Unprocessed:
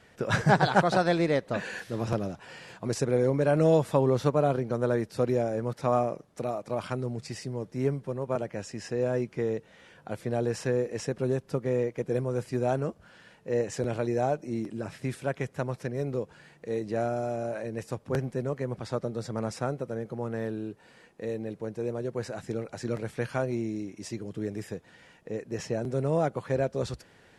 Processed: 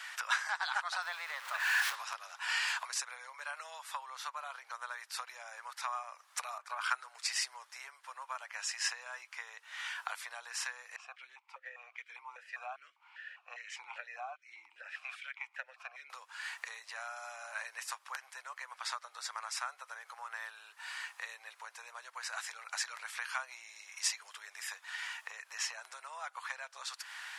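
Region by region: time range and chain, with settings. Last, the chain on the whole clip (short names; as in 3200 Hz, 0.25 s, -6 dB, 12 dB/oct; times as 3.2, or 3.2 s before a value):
1.02–1.95 zero-crossing step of -32 dBFS + HPF 390 Hz + high shelf 2500 Hz -10.5 dB
6.58–7.15 bell 1500 Hz +8.5 dB 0.39 oct + three-band expander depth 70%
10.96–16.1 bell 1400 Hz +4.5 dB 0.56 oct + vowel sequencer 5 Hz
whole clip: compressor 8:1, threshold -41 dBFS; steep high-pass 980 Hz 36 dB/oct; gain +15.5 dB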